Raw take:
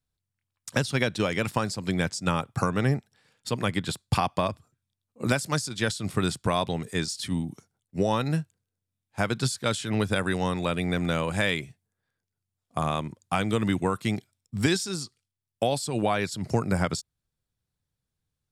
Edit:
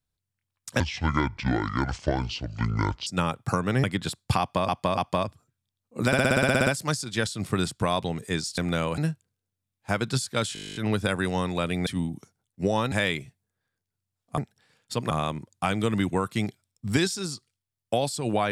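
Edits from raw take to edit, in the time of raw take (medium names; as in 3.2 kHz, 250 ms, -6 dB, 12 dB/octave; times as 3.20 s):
0.80–2.16 s: speed 60%
2.93–3.66 s: move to 12.80 s
4.22–4.51 s: loop, 3 plays
5.31 s: stutter 0.06 s, 11 plays
7.22–8.27 s: swap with 10.94–11.34 s
9.83 s: stutter 0.02 s, 12 plays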